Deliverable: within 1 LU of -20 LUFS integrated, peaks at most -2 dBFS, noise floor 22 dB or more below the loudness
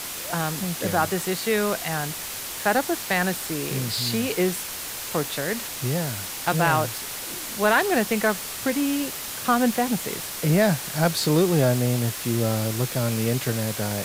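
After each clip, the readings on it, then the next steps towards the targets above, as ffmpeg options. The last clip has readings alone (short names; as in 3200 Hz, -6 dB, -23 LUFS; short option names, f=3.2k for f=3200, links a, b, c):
noise floor -34 dBFS; noise floor target -46 dBFS; loudness -24.0 LUFS; peak -6.5 dBFS; loudness target -20.0 LUFS
-> -af "afftdn=nr=12:nf=-34"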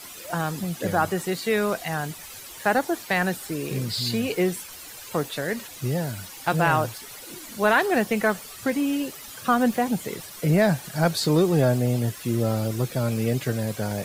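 noise floor -41 dBFS; noise floor target -47 dBFS
-> -af "afftdn=nr=6:nf=-41"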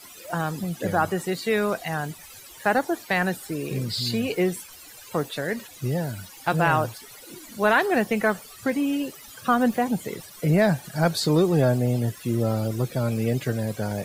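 noise floor -45 dBFS; noise floor target -47 dBFS
-> -af "afftdn=nr=6:nf=-45"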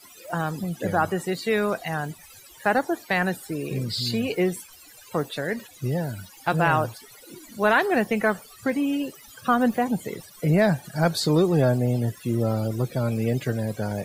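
noise floor -49 dBFS; loudness -25.0 LUFS; peak -7.5 dBFS; loudness target -20.0 LUFS
-> -af "volume=5dB"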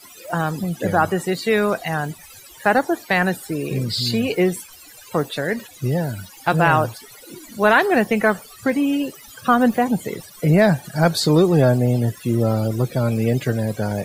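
loudness -20.0 LUFS; peak -2.5 dBFS; noise floor -44 dBFS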